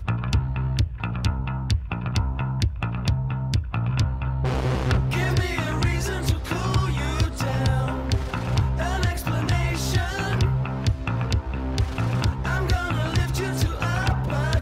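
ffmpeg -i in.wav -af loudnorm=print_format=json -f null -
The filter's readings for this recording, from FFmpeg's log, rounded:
"input_i" : "-24.8",
"input_tp" : "-9.3",
"input_lra" : "1.7",
"input_thresh" : "-34.8",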